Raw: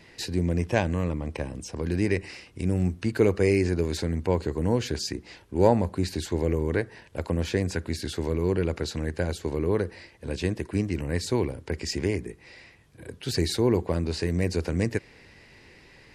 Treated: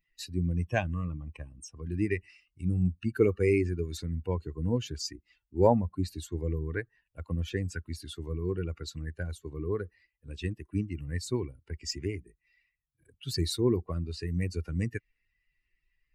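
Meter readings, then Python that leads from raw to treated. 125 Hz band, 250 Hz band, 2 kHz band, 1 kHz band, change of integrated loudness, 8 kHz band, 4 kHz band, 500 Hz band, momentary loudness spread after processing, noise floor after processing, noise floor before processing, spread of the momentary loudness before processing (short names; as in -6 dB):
-4.0 dB, -5.5 dB, -5.5 dB, -5.0 dB, -4.5 dB, -5.5 dB, -5.5 dB, -5.5 dB, 14 LU, -81 dBFS, -54 dBFS, 11 LU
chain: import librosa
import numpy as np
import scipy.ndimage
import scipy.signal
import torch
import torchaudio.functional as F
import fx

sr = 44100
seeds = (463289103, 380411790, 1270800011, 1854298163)

y = fx.bin_expand(x, sr, power=2.0)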